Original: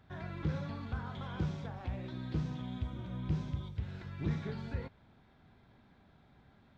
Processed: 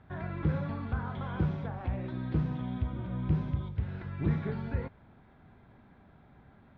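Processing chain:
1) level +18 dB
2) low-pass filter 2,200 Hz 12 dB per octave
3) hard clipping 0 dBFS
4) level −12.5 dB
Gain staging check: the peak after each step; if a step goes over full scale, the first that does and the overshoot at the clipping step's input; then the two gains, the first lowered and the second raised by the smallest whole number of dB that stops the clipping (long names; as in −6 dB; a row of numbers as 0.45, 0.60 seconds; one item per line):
−4.5, −4.5, −4.5, −17.0 dBFS
no step passes full scale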